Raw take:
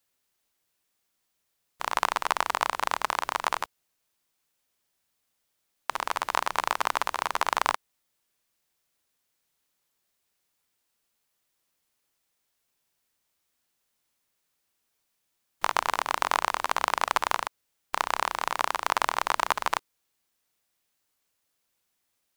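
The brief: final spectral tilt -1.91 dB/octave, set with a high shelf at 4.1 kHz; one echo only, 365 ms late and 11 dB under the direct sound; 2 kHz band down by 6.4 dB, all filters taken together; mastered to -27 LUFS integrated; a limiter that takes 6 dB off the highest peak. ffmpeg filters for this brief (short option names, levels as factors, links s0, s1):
-af "equalizer=f=2000:t=o:g=-7,highshelf=f=4100:g=-8,alimiter=limit=0.178:level=0:latency=1,aecho=1:1:365:0.282,volume=2.24"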